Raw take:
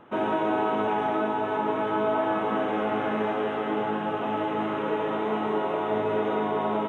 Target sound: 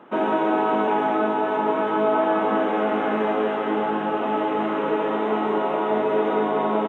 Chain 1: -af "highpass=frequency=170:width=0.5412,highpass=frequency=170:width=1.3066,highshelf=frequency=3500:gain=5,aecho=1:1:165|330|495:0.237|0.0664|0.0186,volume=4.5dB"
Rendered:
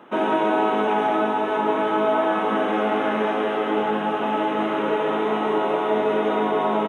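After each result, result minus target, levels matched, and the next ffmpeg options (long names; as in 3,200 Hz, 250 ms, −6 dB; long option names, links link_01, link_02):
8,000 Hz band +8.0 dB; echo 64 ms early
-af "highpass=frequency=170:width=0.5412,highpass=frequency=170:width=1.3066,highshelf=frequency=3500:gain=-5,aecho=1:1:165|330|495:0.237|0.0664|0.0186,volume=4.5dB"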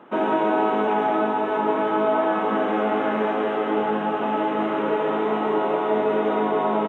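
echo 64 ms early
-af "highpass=frequency=170:width=0.5412,highpass=frequency=170:width=1.3066,highshelf=frequency=3500:gain=-5,aecho=1:1:229|458|687:0.237|0.0664|0.0186,volume=4.5dB"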